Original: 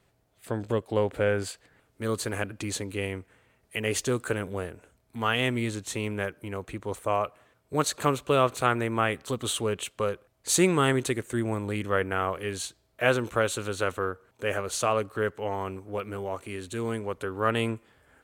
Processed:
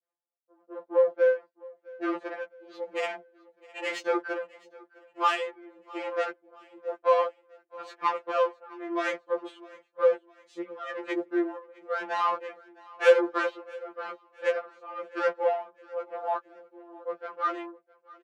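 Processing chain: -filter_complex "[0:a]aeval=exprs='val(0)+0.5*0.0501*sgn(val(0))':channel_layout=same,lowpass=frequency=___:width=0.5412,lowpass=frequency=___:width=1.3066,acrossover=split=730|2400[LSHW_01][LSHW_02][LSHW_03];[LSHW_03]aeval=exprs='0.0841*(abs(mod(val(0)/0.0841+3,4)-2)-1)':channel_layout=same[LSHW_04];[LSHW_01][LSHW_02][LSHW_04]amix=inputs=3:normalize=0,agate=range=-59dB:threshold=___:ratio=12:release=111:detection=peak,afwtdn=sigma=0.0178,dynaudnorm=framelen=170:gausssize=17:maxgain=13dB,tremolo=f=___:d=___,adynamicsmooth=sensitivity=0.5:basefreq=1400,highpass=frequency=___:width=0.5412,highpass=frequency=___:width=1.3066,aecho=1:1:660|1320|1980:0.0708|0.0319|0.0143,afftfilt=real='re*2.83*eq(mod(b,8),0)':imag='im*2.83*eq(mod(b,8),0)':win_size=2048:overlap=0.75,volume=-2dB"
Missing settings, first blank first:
10000, 10000, -28dB, 0.98, 0.94, 390, 390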